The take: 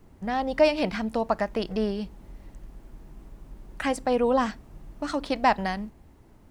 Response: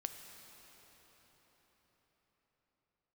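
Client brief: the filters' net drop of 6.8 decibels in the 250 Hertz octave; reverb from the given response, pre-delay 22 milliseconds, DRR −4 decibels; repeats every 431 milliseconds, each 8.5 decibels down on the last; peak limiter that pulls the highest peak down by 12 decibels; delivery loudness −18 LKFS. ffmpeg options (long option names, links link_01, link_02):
-filter_complex "[0:a]equalizer=frequency=250:width_type=o:gain=-8,alimiter=limit=-21.5dB:level=0:latency=1,aecho=1:1:431|862|1293|1724:0.376|0.143|0.0543|0.0206,asplit=2[link_01][link_02];[1:a]atrim=start_sample=2205,adelay=22[link_03];[link_02][link_03]afir=irnorm=-1:irlink=0,volume=5.5dB[link_04];[link_01][link_04]amix=inputs=2:normalize=0,volume=10.5dB"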